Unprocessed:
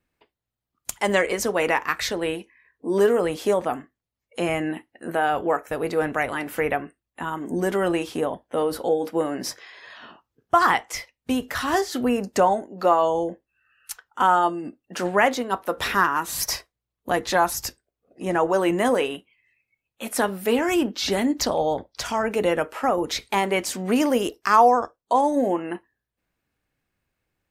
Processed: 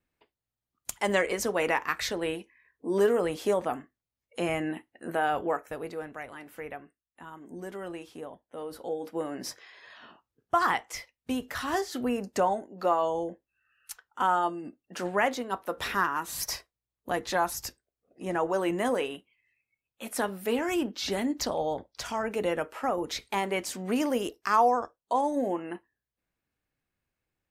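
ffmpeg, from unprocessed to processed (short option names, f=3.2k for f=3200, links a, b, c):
-af "volume=4dB,afade=t=out:st=5.36:d=0.7:silence=0.281838,afade=t=in:st=8.57:d=0.92:silence=0.354813"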